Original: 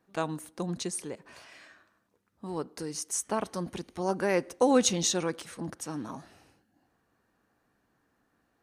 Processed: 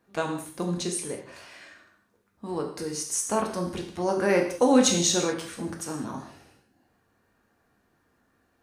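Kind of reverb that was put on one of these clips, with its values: non-linear reverb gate 0.23 s falling, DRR 1 dB; gain +2 dB

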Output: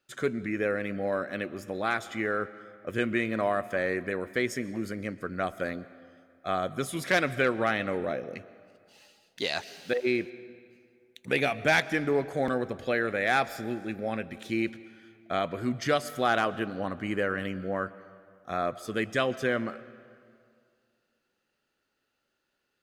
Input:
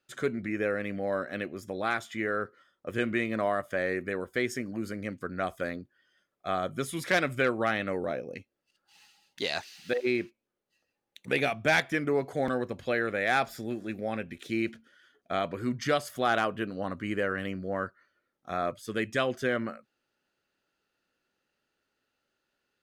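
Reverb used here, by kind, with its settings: digital reverb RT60 2.2 s, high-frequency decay 0.7×, pre-delay 85 ms, DRR 17 dB; gain +1 dB

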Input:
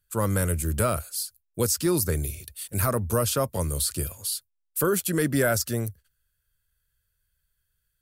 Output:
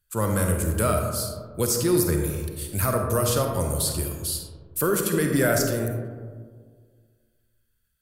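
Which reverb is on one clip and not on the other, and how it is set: digital reverb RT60 1.8 s, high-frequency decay 0.3×, pre-delay 10 ms, DRR 2.5 dB

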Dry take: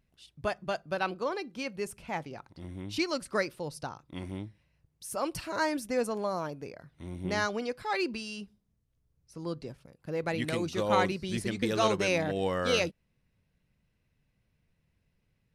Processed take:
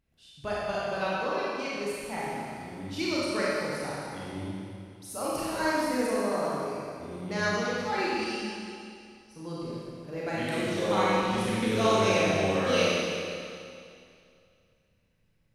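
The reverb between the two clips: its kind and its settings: Schroeder reverb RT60 2.4 s, combs from 28 ms, DRR -7.5 dB; gain -5 dB

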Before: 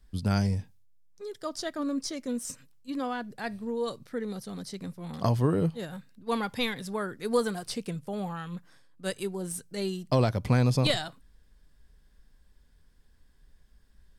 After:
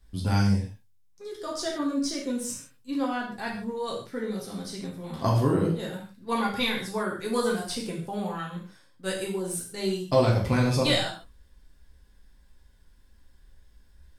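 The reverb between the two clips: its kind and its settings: non-linear reverb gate 0.18 s falling, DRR -3 dB; gain -1 dB

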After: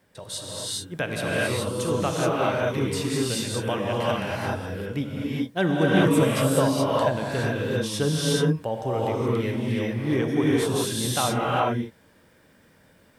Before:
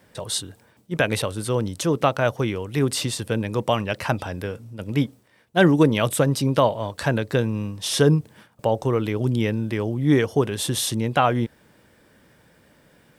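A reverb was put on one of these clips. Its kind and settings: non-linear reverb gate 0.45 s rising, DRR -5.5 dB; gain -8 dB

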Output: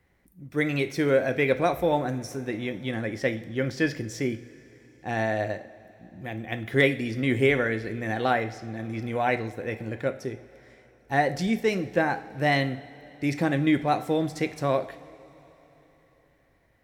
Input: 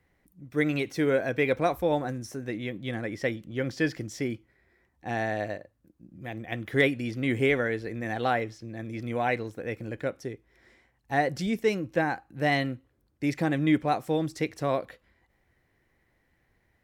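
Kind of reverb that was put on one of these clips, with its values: two-slope reverb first 0.5 s, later 4.1 s, from -17 dB, DRR 9 dB; gain +2 dB

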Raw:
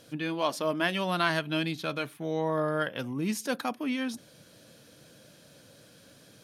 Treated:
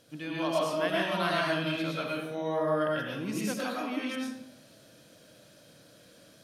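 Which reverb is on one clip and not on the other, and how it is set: digital reverb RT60 0.78 s, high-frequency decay 0.75×, pre-delay 70 ms, DRR -5 dB; gain -6.5 dB

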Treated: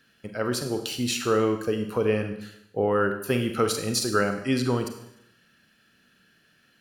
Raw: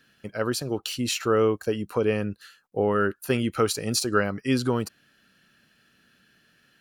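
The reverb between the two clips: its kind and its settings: Schroeder reverb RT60 0.79 s, combs from 33 ms, DRR 6 dB; gain -1 dB

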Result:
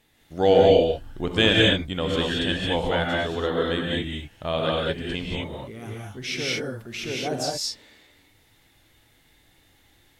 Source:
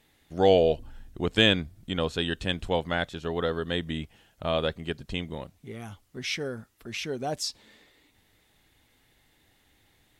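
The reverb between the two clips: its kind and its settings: non-linear reverb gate 0.25 s rising, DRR -3 dB

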